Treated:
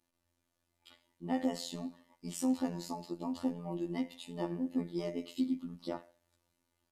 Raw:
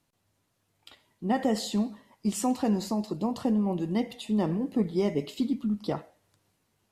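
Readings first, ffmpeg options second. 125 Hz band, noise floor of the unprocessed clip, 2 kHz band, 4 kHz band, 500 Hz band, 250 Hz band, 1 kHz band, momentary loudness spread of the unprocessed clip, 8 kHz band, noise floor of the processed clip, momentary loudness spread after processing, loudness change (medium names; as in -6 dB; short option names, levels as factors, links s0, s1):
-11.0 dB, -75 dBFS, -8.5 dB, -7.5 dB, -9.5 dB, -8.0 dB, -10.0 dB, 5 LU, -8.0 dB, -83 dBFS, 10 LU, -8.5 dB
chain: -af "aecho=1:1:3.4:0.63,afftfilt=real='hypot(re,im)*cos(PI*b)':imag='0':win_size=2048:overlap=0.75,volume=0.531"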